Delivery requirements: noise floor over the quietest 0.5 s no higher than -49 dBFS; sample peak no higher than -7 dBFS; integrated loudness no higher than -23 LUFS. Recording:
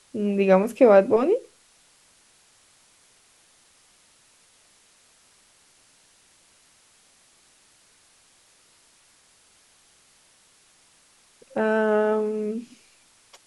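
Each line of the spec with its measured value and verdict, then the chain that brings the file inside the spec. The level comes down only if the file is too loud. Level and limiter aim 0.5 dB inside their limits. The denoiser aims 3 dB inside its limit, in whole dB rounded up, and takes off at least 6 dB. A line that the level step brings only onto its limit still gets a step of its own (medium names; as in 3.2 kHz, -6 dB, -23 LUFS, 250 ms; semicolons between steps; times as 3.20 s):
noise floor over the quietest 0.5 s -59 dBFS: pass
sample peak -4.5 dBFS: fail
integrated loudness -21.0 LUFS: fail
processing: trim -2.5 dB; peak limiter -7.5 dBFS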